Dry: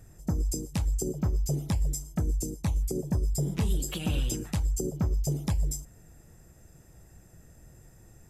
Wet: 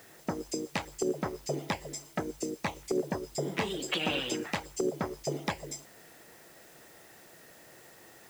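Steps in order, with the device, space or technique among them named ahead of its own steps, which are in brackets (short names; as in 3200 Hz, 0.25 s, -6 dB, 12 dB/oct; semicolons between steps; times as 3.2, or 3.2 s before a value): drive-through speaker (BPF 430–3700 Hz; bell 2000 Hz +5 dB 0.46 oct; hard clip -29.5 dBFS, distortion -22 dB; white noise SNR 22 dB); gain +8.5 dB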